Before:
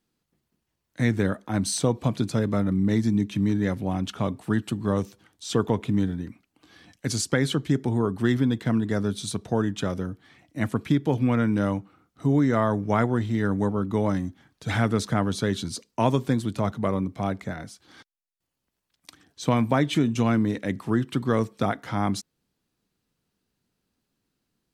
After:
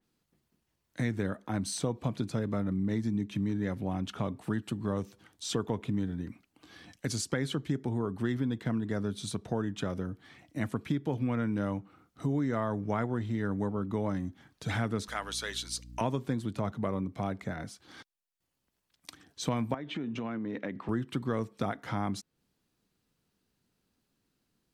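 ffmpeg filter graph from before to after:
-filter_complex "[0:a]asettb=1/sr,asplit=3[a][b][c];[a]atrim=end=15.084[d];[b]atrim=start=15.08:end=16.01,asetpts=PTS-STARTPTS,afade=t=in:d=0.004:c=qsin,afade=t=out:st=0.926:d=0.004:c=qsin,highpass=480,tiltshelf=f=1.3k:g=-8.5,aeval=exprs='val(0)+0.00631*(sin(2*PI*60*n/s)+sin(2*PI*2*60*n/s)/2+sin(2*PI*3*60*n/s)/3+sin(2*PI*4*60*n/s)/4+sin(2*PI*5*60*n/s)/5)':c=same[e];[c]atrim=start=16.006[f];[d][e]acrossfade=d=0.004:c1=hsin:c2=qsin[g];[g][f]acrossfade=d=0.004:c1=qsin:c2=hsin,asettb=1/sr,asplit=3[h][i][j];[h]atrim=end=19.744[k];[i]atrim=start=19.74:end=20.89,asetpts=PTS-STARTPTS,afade=t=in:d=0.004:c=qsin,afade=t=out:st=1.146:d=0.004:c=qsin,acompressor=threshold=-26dB:ratio=10:attack=3.2:release=140:knee=1:detection=peak,highpass=180,lowpass=3k[l];[j]atrim=start=20.886[m];[k][l]acrossfade=d=0.004:c1=hsin:c2=qsin[n];[n][m]acrossfade=d=0.004:c1=qsin:c2=hsin,acompressor=threshold=-34dB:ratio=2,adynamicequalizer=threshold=0.002:dfrequency=3300:dqfactor=0.7:tfrequency=3300:tqfactor=0.7:attack=5:release=100:ratio=0.375:range=2:mode=cutabove:tftype=highshelf"

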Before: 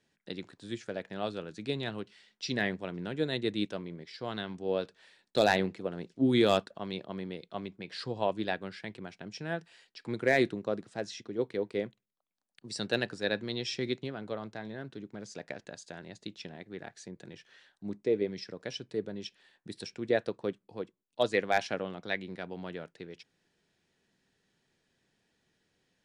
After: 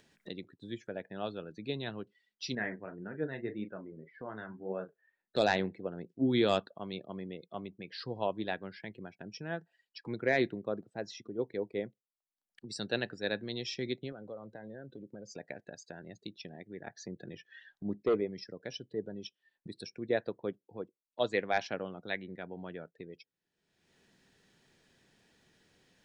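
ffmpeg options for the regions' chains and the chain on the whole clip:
-filter_complex "[0:a]asettb=1/sr,asplit=3[a][b][c];[a]atrim=end=2.554[d];[b]atrim=start=2.55:end=5.36,asetpts=PTS-STARTPTS,afade=t=in:d=0.004:c=qsin,afade=t=out:st=2.806:d=0.004:c=qsin,lowpass=f=1.7k:t=q:w=1.5,asplit=2[e][f];[f]adelay=37,volume=-8.5dB[g];[e][g]amix=inputs=2:normalize=0,atrim=end_sample=123921,flanger=delay=3.9:depth=5.8:regen=56:speed=1.8:shape=triangular[h];[c]atrim=start=5.356[i];[d][h]acrossfade=d=0.004:c1=hsin:c2=qsin[j];[j][i]acrossfade=d=0.004:c1=qsin:c2=hsin,asettb=1/sr,asplit=3[k][l][m];[k]atrim=end=14.124[n];[l]atrim=start=14.12:end=15.32,asetpts=PTS-STARTPTS,afade=t=in:d=0.004:c=qsin,afade=t=out:st=1.196:d=0.004:c=qsin,highpass=50,equalizer=f=530:w=6.6:g=8.5,acompressor=threshold=-43dB:ratio=2:attack=3.2:release=140:knee=1:detection=peak[o];[m]atrim=start=15.316[p];[n][o]acrossfade=d=0.004:c1=hsin:c2=qsin[q];[q][p]acrossfade=d=0.004:c1=qsin:c2=hsin,asettb=1/sr,asplit=3[r][s][t];[r]atrim=end=16.864[u];[s]atrim=start=16.86:end=18.21,asetpts=PTS-STARTPTS,afade=t=in:d=0.004:c=qsin,afade=t=out:st=1.346:d=0.004:c=qsin,volume=25dB,asoftclip=hard,volume=-25dB,acontrast=23,lowpass=f=6.8k:w=0.5412,lowpass=f=6.8k:w=1.3066[v];[t]atrim=start=18.206[w];[u][v]acrossfade=d=0.004:c1=hsin:c2=qsin[x];[x][w]acrossfade=d=0.004:c1=qsin:c2=hsin,afftdn=nr=24:nf=-49,acompressor=mode=upward:threshold=-38dB:ratio=2.5,volume=-3dB"

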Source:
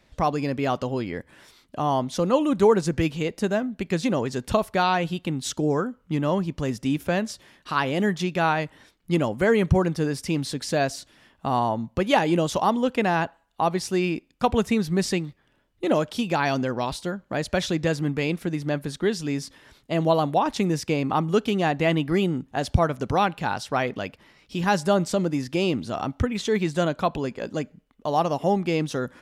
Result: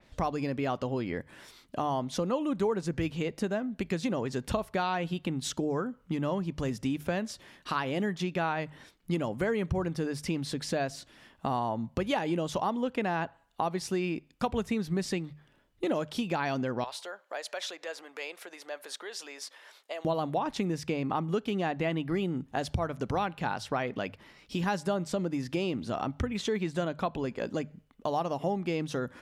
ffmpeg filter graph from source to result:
-filter_complex "[0:a]asettb=1/sr,asplit=3[a][b][c];[a]atrim=end=16.844[d];[b]atrim=start=16.84:end=20.05,asetpts=PTS-STARTPTS,afade=t=in:d=0.004:c=qsin,afade=t=out:st=3.206:d=0.004:c=qsin,acompressor=threshold=-29dB:ratio=5:attack=3.2:release=140:knee=1:detection=peak,highpass=f=520:w=0.5412,highpass=f=520:w=1.3066[e];[c]atrim=start=20.046[f];[d][e]acrossfade=d=0.004:c1=hsin:c2=qsin[g];[g][f]acrossfade=d=0.004:c1=qsin:c2=hsin,acompressor=threshold=-29dB:ratio=3,bandreject=f=50:t=h:w=6,bandreject=f=100:t=h:w=6,bandreject=f=150:t=h:w=6,adynamicequalizer=threshold=0.00355:dfrequency=3900:dqfactor=0.7:tfrequency=3900:tqfactor=0.7:attack=5:release=100:ratio=0.375:range=3:mode=cutabove:tftype=highshelf"

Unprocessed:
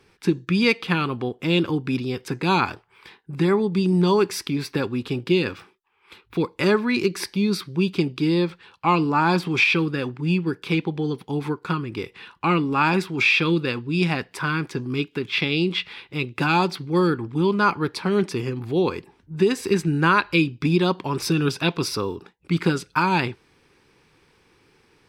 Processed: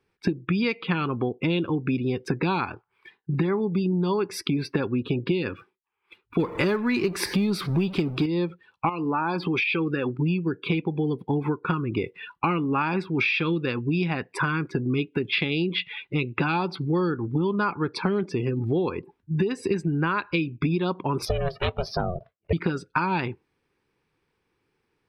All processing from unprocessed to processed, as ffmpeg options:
-filter_complex "[0:a]asettb=1/sr,asplit=3[a][b][c];[a]atrim=end=6.394[d];[b]atrim=start=6.39:end=8.26,asetpts=PTS-STARTPTS,afade=t=in:d=0.004:c=qsin,afade=t=out:st=1.866:d=0.004:c=qsin,aeval=exprs='val(0)+0.5*0.0224*sgn(val(0))':c=same,acontrast=49,acrusher=bits=6:mode=log:mix=0:aa=0.000001[e];[c]atrim=start=8.256[f];[d][e]acrossfade=d=0.004:c1=hsin:c2=qsin[g];[g][f]acrossfade=d=0.004:c1=qsin:c2=hsin,asettb=1/sr,asplit=3[h][i][j];[h]atrim=end=8.894[k];[i]atrim=start=8.89:end=10.19,asetpts=PTS-STARTPTS,afade=t=in:d=0.004:c=qsin,afade=t=out:st=1.296:d=0.004:c=qsin,bass=f=250:g=-6,treble=f=4k:g=1,acompressor=threshold=-27dB:ratio=2.5:attack=3.2:release=140:knee=1:detection=peak[l];[j]atrim=start=10.186[m];[k][l]acrossfade=d=0.004:c1=hsin:c2=qsin[n];[n][m]acrossfade=d=0.004:c1=qsin:c2=hsin,asettb=1/sr,asplit=3[o][p][q];[o]atrim=end=21.254[r];[p]atrim=start=21.25:end=22.53,asetpts=PTS-STARTPTS,afade=t=in:d=0.004:c=qsin,afade=t=out:st=1.276:d=0.004:c=qsin,equalizer=f=7.7k:t=o:w=0.89:g=-10.5,aeval=exprs='val(0)*sin(2*PI*270*n/s)':c=same[s];[q]atrim=start=22.526[t];[r][s]acrossfade=d=0.004:c1=hsin:c2=qsin[u];[u][t]acrossfade=d=0.004:c1=qsin:c2=hsin,afftdn=nr=23:nf=-37,equalizer=f=6k:w=0.67:g=-5.5,acompressor=threshold=-30dB:ratio=10,volume=8.5dB"

